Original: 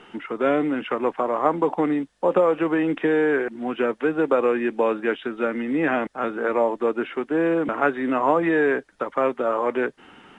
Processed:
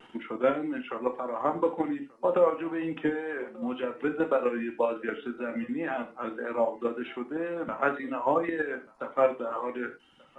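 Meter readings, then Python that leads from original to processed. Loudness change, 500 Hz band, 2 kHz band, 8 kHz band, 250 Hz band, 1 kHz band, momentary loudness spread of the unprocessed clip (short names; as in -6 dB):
-7.5 dB, -7.0 dB, -8.5 dB, n/a, -8.5 dB, -7.0 dB, 6 LU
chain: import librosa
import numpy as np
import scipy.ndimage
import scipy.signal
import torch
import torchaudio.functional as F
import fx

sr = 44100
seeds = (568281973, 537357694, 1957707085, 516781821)

p1 = fx.dereverb_blind(x, sr, rt60_s=1.1)
p2 = fx.level_steps(p1, sr, step_db=10)
p3 = fx.vibrato(p2, sr, rate_hz=1.9, depth_cents=54.0)
p4 = p3 + fx.echo_single(p3, sr, ms=1184, db=-23.5, dry=0)
p5 = fx.rev_gated(p4, sr, seeds[0], gate_ms=130, shape='falling', drr_db=4.5)
y = F.gain(torch.from_numpy(p5), -3.5).numpy()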